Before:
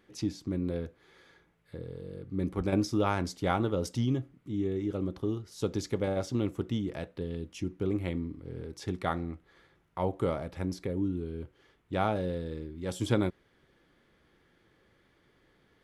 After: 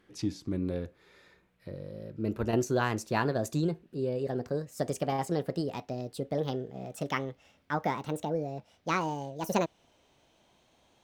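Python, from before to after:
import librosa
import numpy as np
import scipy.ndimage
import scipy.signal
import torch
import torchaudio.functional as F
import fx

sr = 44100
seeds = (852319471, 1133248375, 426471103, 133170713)

y = fx.speed_glide(x, sr, from_pct=97, to_pct=190)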